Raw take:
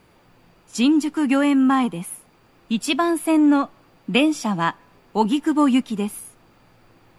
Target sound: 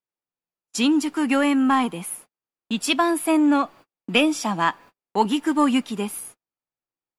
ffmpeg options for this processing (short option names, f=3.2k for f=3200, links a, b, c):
-filter_complex "[0:a]agate=range=-43dB:threshold=-43dB:ratio=16:detection=peak,lowshelf=f=220:g=-11.5,asplit=2[a][b];[b]asoftclip=type=tanh:threshold=-19dB,volume=-10dB[c];[a][c]amix=inputs=2:normalize=0"